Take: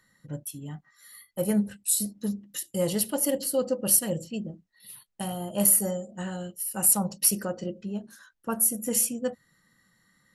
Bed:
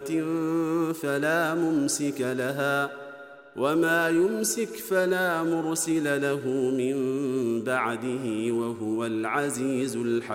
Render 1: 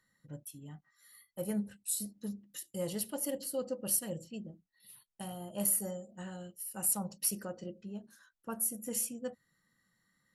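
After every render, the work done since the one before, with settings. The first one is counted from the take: trim -10 dB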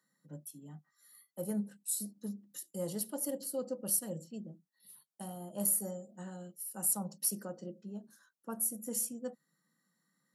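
Chebyshev high-pass 150 Hz, order 5; peaking EQ 2.5 kHz -11.5 dB 0.99 oct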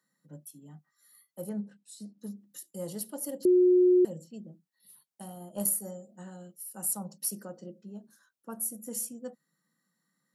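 1.49–2.19 s: distance through air 120 m; 3.45–4.05 s: bleep 362 Hz -17.5 dBFS; 5.36–5.86 s: transient shaper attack +5 dB, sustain -2 dB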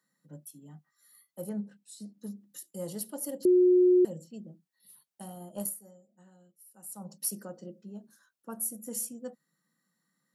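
5.53–7.13 s: dip -13.5 dB, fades 0.22 s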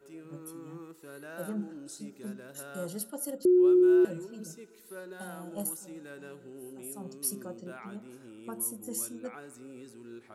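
add bed -20.5 dB

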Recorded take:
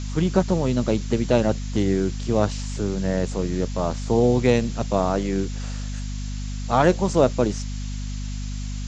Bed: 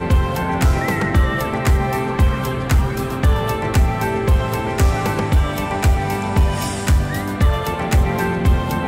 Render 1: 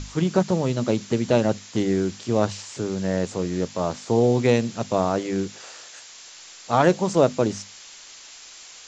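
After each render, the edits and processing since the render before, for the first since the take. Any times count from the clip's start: hum notches 50/100/150/200/250 Hz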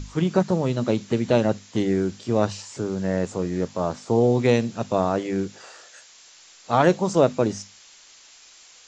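noise print and reduce 6 dB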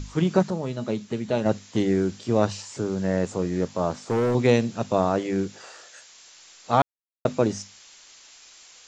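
0.50–1.46 s: feedback comb 210 Hz, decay 0.17 s; 3.91–4.35 s: hard clipper -19 dBFS; 6.82–7.25 s: mute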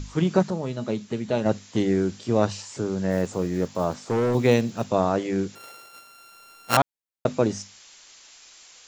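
3.10–4.91 s: block-companded coder 7-bit; 5.55–6.77 s: sorted samples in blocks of 32 samples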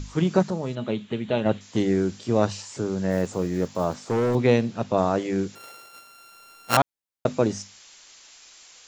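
0.75–1.61 s: resonant high shelf 4.2 kHz -7.5 dB, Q 3; 4.35–4.98 s: Bessel low-pass 4.3 kHz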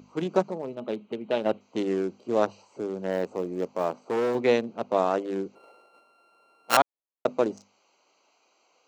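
local Wiener filter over 25 samples; high-pass 340 Hz 12 dB/octave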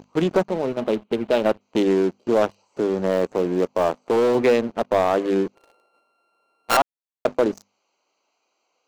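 compression 1.5:1, threshold -30 dBFS, peak gain reduction 6 dB; waveshaping leveller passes 3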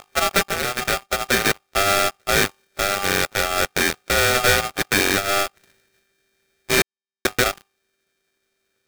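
sorted samples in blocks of 32 samples; polarity switched at an audio rate 990 Hz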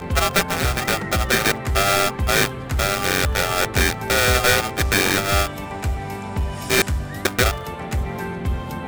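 add bed -8.5 dB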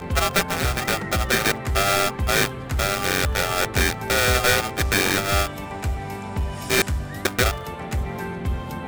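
trim -2 dB

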